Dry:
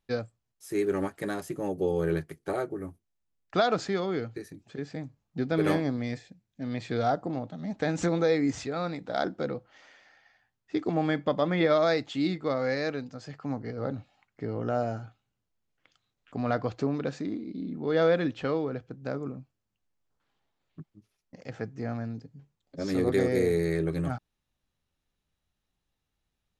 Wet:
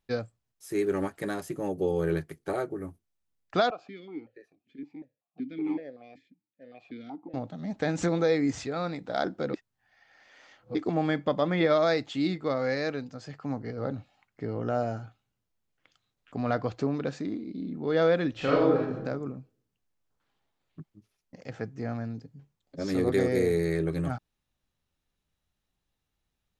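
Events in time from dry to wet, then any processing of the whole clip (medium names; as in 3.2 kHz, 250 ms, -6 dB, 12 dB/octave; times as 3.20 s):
3.70–7.34 s: stepped vowel filter 5.3 Hz
9.54–10.75 s: reverse
18.31–18.96 s: reverb throw, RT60 0.8 s, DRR -6 dB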